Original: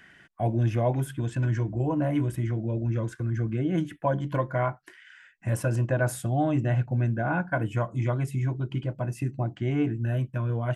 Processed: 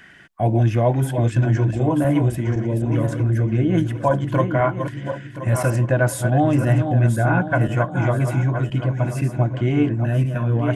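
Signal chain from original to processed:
feedback delay that plays each chunk backwards 512 ms, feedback 51%, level −7 dB
level +7 dB

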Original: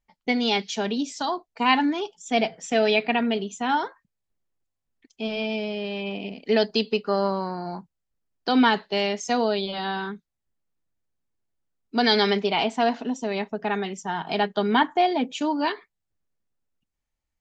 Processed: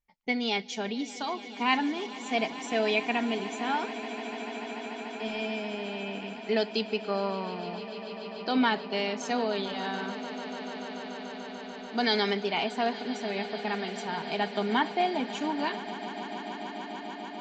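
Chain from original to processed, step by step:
parametric band 2,200 Hz +3.5 dB 0.45 octaves
echo that builds up and dies away 146 ms, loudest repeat 8, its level −18 dB
level −6.5 dB

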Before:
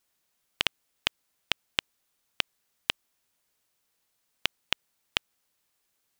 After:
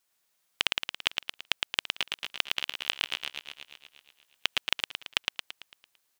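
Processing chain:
0:01.66–0:04.59: feedback delay that plays each chunk backwards 119 ms, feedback 67%, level −5 dB
low-shelf EQ 410 Hz −7.5 dB
repeating echo 112 ms, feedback 50%, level −3.5 dB

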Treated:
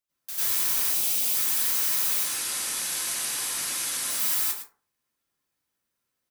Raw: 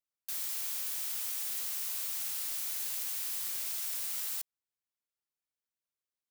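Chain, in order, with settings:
0:00.81–0:01.26: flat-topped bell 1,400 Hz −10 dB 1.2 octaves
0:02.14–0:04.10: Butterworth low-pass 12,000 Hz 96 dB per octave
in parallel at −10 dB: soft clipping −32 dBFS, distortion −16 dB
on the sum: single-tap delay 109 ms −11 dB
convolution reverb RT60 0.40 s, pre-delay 87 ms, DRR −11 dB

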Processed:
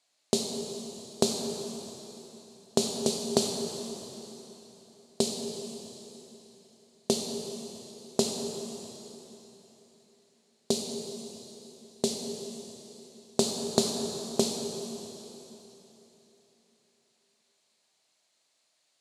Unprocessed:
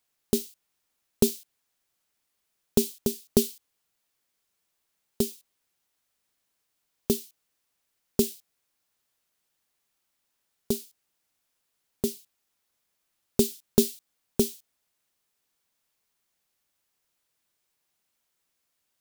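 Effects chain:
downward compressor 4 to 1, threshold −22 dBFS, peak gain reduction 8 dB
loudspeaker in its box 200–9,400 Hz, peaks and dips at 210 Hz −4 dB, 400 Hz −3 dB, 640 Hz +7 dB, 1,400 Hz −4 dB, 4,200 Hz +8 dB, 7,000 Hz +3 dB
dense smooth reverb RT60 3.6 s, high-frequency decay 0.95×, DRR 2 dB
level +4 dB

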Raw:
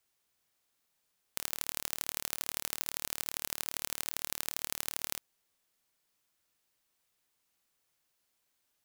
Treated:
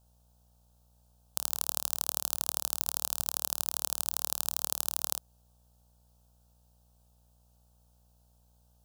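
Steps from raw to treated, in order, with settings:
hum with harmonics 60 Hz, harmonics 15, −70 dBFS −6 dB per octave
phaser with its sweep stopped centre 860 Hz, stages 4
level +5.5 dB

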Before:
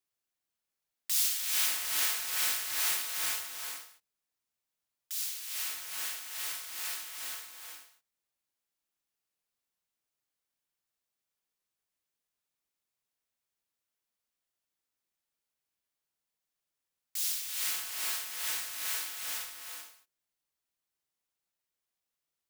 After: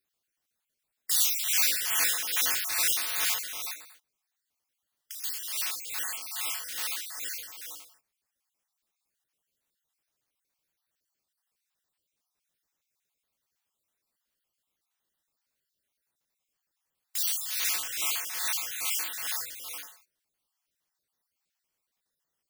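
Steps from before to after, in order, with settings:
time-frequency cells dropped at random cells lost 40%
0:03.73–0:05.24: downward compressor 4 to 1, threshold −48 dBFS, peak gain reduction 12.5 dB
level +6.5 dB

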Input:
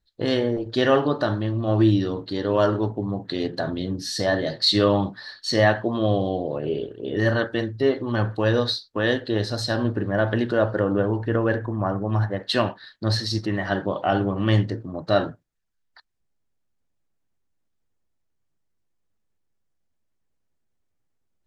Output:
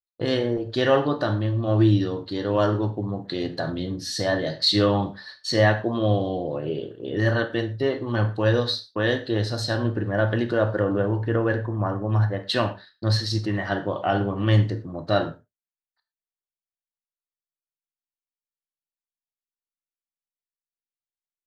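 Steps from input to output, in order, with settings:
downward expander −35 dBFS
reverb whose tail is shaped and stops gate 140 ms falling, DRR 9 dB
level −1.5 dB

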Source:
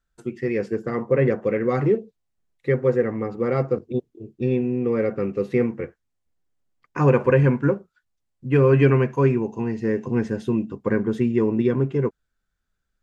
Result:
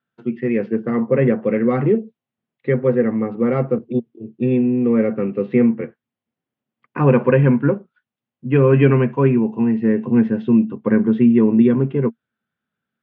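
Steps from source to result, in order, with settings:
elliptic band-pass filter 120–3,200 Hz, stop band 50 dB
parametric band 230 Hz +10 dB 0.29 octaves
level +2.5 dB

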